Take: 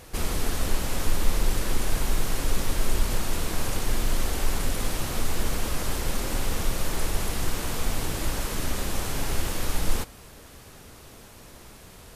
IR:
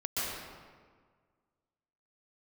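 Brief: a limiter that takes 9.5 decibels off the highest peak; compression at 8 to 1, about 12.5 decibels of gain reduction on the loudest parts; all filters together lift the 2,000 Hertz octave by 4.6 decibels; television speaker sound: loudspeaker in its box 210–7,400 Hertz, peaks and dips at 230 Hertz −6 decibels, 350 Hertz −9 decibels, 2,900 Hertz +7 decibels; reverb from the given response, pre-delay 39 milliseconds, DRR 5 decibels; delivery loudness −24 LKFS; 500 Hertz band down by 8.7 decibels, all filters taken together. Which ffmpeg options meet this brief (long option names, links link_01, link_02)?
-filter_complex "[0:a]equalizer=frequency=500:width_type=o:gain=-8.5,equalizer=frequency=2000:width_type=o:gain=4.5,acompressor=threshold=-27dB:ratio=8,alimiter=level_in=5dB:limit=-24dB:level=0:latency=1,volume=-5dB,asplit=2[link_01][link_02];[1:a]atrim=start_sample=2205,adelay=39[link_03];[link_02][link_03]afir=irnorm=-1:irlink=0,volume=-12dB[link_04];[link_01][link_04]amix=inputs=2:normalize=0,highpass=frequency=210:width=0.5412,highpass=frequency=210:width=1.3066,equalizer=frequency=230:width_type=q:width=4:gain=-6,equalizer=frequency=350:width_type=q:width=4:gain=-9,equalizer=frequency=2900:width_type=q:width=4:gain=7,lowpass=frequency=7400:width=0.5412,lowpass=frequency=7400:width=1.3066,volume=18dB"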